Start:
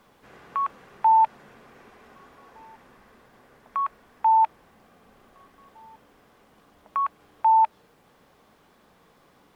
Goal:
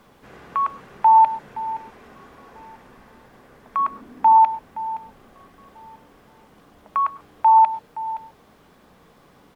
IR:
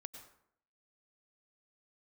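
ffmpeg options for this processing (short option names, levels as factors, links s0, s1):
-filter_complex "[0:a]asettb=1/sr,asplit=3[s0][s1][s2];[s0]atrim=end=3.794[s3];[s1]atrim=start=3.79:end=4.37,asetpts=PTS-STARTPTS,afade=t=in:d=0.004:c=qsin,afade=t=out:st=0.576:d=0.004:c=qsin,equalizer=f=260:t=o:w=1:g=14[s4];[s2]atrim=start=4.366[s5];[s3][s4]acrossfade=d=0.004:c1=hsin:c2=qsin[s6];[s6][s5]acrossfade=d=0.004:c1=qsin:c2=hsin,aecho=1:1:520:0.168,asplit=2[s7][s8];[1:a]atrim=start_sample=2205,afade=t=out:st=0.19:d=0.01,atrim=end_sample=8820,lowshelf=f=480:g=9[s9];[s8][s9]afir=irnorm=-1:irlink=0,volume=1.06[s10];[s7][s10]amix=inputs=2:normalize=0"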